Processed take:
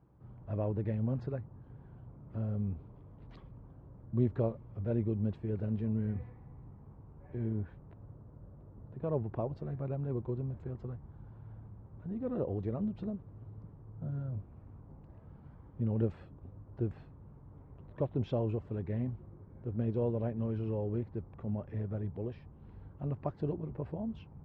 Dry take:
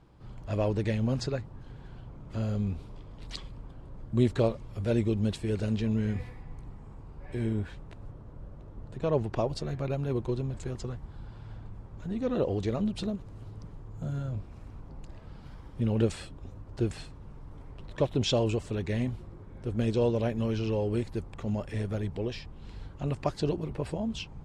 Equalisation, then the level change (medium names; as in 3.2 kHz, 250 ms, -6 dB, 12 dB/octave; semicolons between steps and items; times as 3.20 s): high-pass 95 Hz 12 dB/octave; low-pass 1.3 kHz 12 dB/octave; bass shelf 120 Hz +10.5 dB; -7.5 dB